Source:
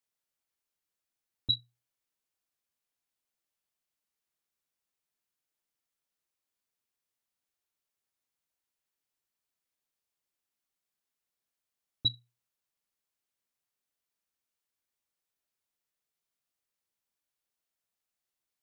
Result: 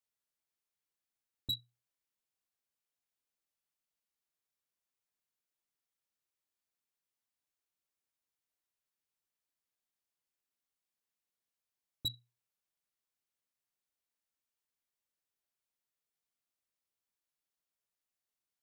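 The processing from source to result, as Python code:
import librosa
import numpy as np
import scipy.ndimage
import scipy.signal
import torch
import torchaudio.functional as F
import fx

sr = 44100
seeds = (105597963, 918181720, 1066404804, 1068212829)

y = np.clip(10.0 ** (25.5 / 20.0) * x, -1.0, 1.0) / 10.0 ** (25.5 / 20.0)
y = F.gain(torch.from_numpy(y), -4.5).numpy()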